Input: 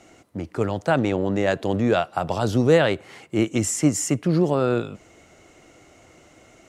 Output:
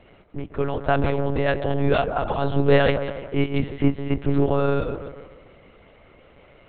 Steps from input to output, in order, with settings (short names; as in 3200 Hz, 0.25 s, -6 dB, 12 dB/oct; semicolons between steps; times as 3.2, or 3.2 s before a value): reverse delay 0.124 s, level -12 dB; on a send: band-limited delay 0.149 s, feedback 49%, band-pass 670 Hz, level -8 dB; on the sum: monotone LPC vocoder at 8 kHz 140 Hz